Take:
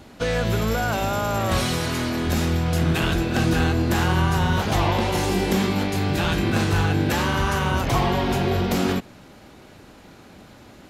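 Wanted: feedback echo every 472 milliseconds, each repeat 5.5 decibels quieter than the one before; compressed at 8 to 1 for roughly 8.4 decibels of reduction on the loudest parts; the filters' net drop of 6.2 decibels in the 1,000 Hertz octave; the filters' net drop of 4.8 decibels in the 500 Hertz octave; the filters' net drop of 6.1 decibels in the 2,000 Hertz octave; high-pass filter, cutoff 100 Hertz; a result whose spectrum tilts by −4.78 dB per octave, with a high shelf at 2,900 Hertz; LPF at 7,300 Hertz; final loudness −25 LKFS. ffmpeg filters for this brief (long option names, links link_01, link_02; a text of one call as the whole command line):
ffmpeg -i in.wav -af "highpass=100,lowpass=7300,equalizer=frequency=500:width_type=o:gain=-5,equalizer=frequency=1000:width_type=o:gain=-5,equalizer=frequency=2000:width_type=o:gain=-9,highshelf=frequency=2900:gain=6.5,acompressor=threshold=-28dB:ratio=8,aecho=1:1:472|944|1416|1888|2360|2832|3304:0.531|0.281|0.149|0.079|0.0419|0.0222|0.0118,volume=5.5dB" out.wav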